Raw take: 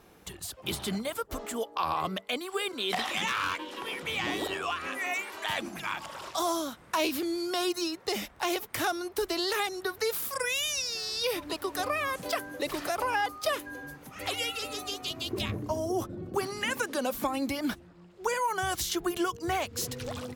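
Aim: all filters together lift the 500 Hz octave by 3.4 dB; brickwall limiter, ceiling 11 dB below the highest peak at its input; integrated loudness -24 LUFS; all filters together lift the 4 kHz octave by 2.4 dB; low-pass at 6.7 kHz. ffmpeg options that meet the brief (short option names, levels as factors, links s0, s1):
-af "lowpass=6700,equalizer=f=500:t=o:g=4.5,equalizer=f=4000:t=o:g=3.5,volume=3.16,alimiter=limit=0.178:level=0:latency=1"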